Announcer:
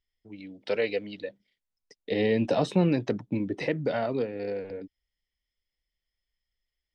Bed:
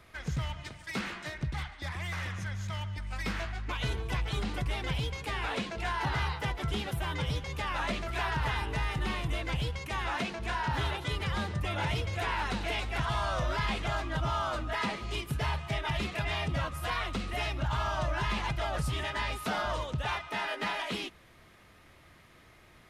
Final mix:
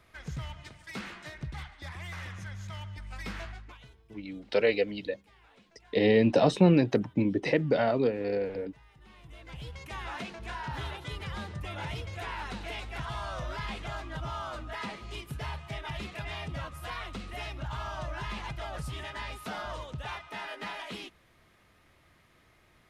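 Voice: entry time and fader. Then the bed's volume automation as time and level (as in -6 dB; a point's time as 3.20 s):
3.85 s, +2.5 dB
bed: 3.51 s -4.5 dB
3.97 s -26.5 dB
8.92 s -26.5 dB
9.81 s -5.5 dB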